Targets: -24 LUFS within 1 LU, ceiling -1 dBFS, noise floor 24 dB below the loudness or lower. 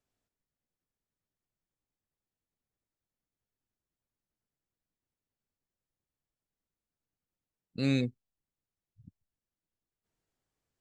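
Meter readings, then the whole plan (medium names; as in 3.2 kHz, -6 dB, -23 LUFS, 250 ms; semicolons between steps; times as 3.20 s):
loudness -31.5 LUFS; peak level -16.5 dBFS; loudness target -24.0 LUFS
-> trim +7.5 dB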